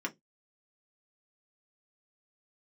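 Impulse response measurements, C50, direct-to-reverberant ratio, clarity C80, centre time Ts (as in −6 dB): 24.0 dB, 0.5 dB, 35.5 dB, 7 ms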